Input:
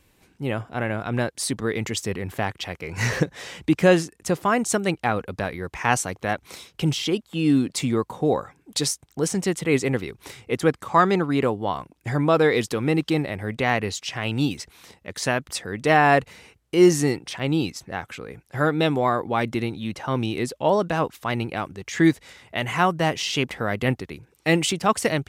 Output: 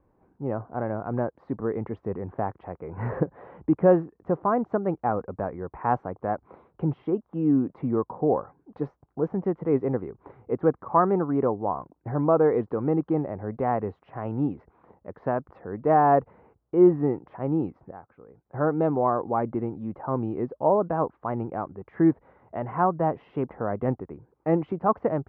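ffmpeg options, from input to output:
-filter_complex "[0:a]asplit=3[a][b][c];[a]atrim=end=17.912[d];[b]atrim=start=17.908:end=18.452,asetpts=PTS-STARTPTS,volume=-10.5dB[e];[c]atrim=start=18.448[f];[d][e]acrossfade=d=0.004:c1=hsin:c2=hsin[g];[g][f]acrossfade=d=0.004:c1=hsin:c2=hsin,lowpass=f=1.1k:w=0.5412,lowpass=f=1.1k:w=1.3066,lowshelf=f=230:g=-6"

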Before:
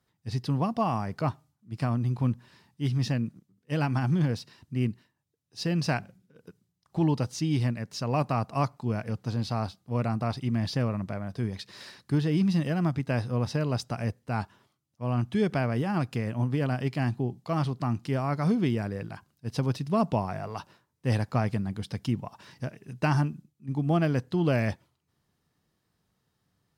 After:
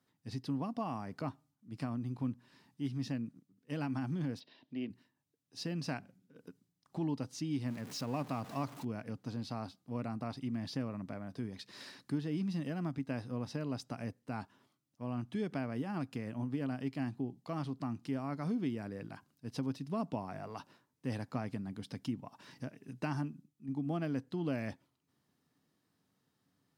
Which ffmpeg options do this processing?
-filter_complex "[0:a]asplit=3[a][b][c];[a]afade=t=out:st=4.39:d=0.02[d];[b]highpass=280,equalizer=f=630:t=q:w=4:g=8,equalizer=f=1.3k:t=q:w=4:g=-10,equalizer=f=3.4k:t=q:w=4:g=8,lowpass=f=4.4k:w=0.5412,lowpass=f=4.4k:w=1.3066,afade=t=in:st=4.39:d=0.02,afade=t=out:st=4.89:d=0.02[e];[c]afade=t=in:st=4.89:d=0.02[f];[d][e][f]amix=inputs=3:normalize=0,asettb=1/sr,asplit=3[g][h][i];[g]atrim=end=7.664[j];[h]atrim=start=7.66:end=8.85,asetpts=PTS-STARTPTS,afade=t=in:d=0.004:c=qsin,afade=t=out:st=1.186:d=0.004:c=qsin,aeval=exprs='val(0)+0.5*0.0178*sgn(val(0))':c=same[k];[i]atrim=start=8.846[l];[j][k]acrossfade=d=0.004:c1=hsin:c2=qsin[m];[m][l]acrossfade=d=0.004:c1=qsin:c2=hsin,highpass=120,equalizer=f=270:t=o:w=0.28:g=10,acompressor=threshold=-46dB:ratio=1.5,volume=-3dB"

